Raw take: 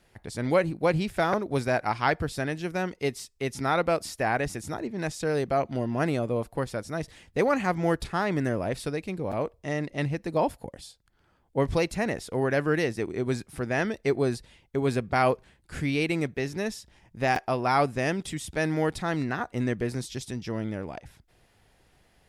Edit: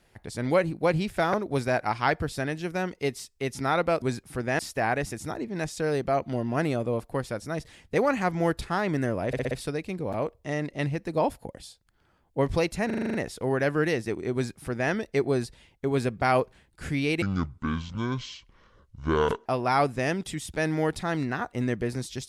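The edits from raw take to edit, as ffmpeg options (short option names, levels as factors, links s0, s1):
-filter_complex "[0:a]asplit=16[s0][s1][s2][s3][s4][s5][s6][s7][s8][s9][s10][s11][s12][s13][s14][s15];[s0]atrim=end=4.022[s16];[s1]atrim=start=13.248:end=13.822[s17];[s2]atrim=start=4.018:end=8.762[s18];[s3]atrim=start=8.698:end=8.762[s19];[s4]atrim=start=8.698:end=8.762[s20];[s5]atrim=start=8.698:end=8.762[s21];[s6]atrim=start=8.698:end=12.092[s22];[s7]atrim=start=12.048:end=12.092[s23];[s8]atrim=start=12.048:end=12.092[s24];[s9]atrim=start=12.048:end=12.092[s25];[s10]atrim=start=12.048:end=12.092[s26];[s11]atrim=start=12.048:end=12.092[s27];[s12]atrim=start=12.048:end=12.092[s28];[s13]atrim=start=12.048:end=16.134[s29];[s14]atrim=start=16.13:end=17.45,asetpts=PTS-STARTPTS,asetrate=26019,aresample=44100,atrim=end_sample=98664,asetpts=PTS-STARTPTS[s30];[s15]atrim=start=17.446[s31];[s16][s17]acrossfade=d=0.004:c1=hsin:c2=hsin[s32];[s32][s18]acrossfade=d=0.004:c1=hsin:c2=hsin[s33];[s33][s19]acrossfade=d=0.004:c1=hsin:c2=hsin[s34];[s34][s20]acrossfade=d=0.004:c1=hsin:c2=hsin[s35];[s35][s21]acrossfade=d=0.004:c1=hsin:c2=hsin[s36];[s36][s22]acrossfade=d=0.004:c1=hsin:c2=hsin[s37];[s37][s23]acrossfade=d=0.004:c1=hsin:c2=hsin[s38];[s38][s24]acrossfade=d=0.004:c1=hsin:c2=hsin[s39];[s39][s25]acrossfade=d=0.004:c1=hsin:c2=hsin[s40];[s40][s26]acrossfade=d=0.004:c1=hsin:c2=hsin[s41];[s41][s27]acrossfade=d=0.004:c1=hsin:c2=hsin[s42];[s42][s28]acrossfade=d=0.004:c1=hsin:c2=hsin[s43];[s43][s29]acrossfade=d=0.004:c1=hsin:c2=hsin[s44];[s44][s30]acrossfade=d=0.004:c1=hsin:c2=hsin[s45];[s45][s31]acrossfade=d=0.004:c1=hsin:c2=hsin"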